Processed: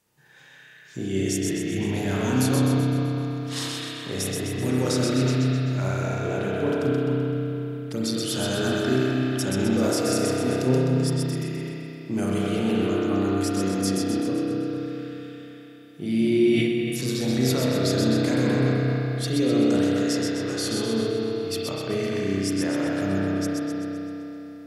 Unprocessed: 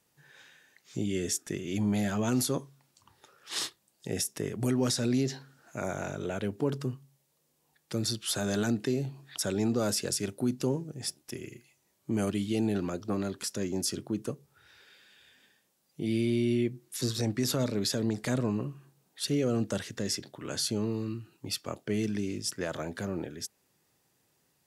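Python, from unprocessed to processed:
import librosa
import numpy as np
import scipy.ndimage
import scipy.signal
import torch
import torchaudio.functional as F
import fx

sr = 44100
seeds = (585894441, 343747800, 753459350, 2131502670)

y = fx.echo_split(x, sr, split_hz=2200.0, low_ms=224, high_ms=128, feedback_pct=52, wet_db=-3.5)
y = fx.rev_spring(y, sr, rt60_s=3.6, pass_ms=(31,), chirp_ms=40, drr_db=-5.5)
y = fx.sustainer(y, sr, db_per_s=25.0)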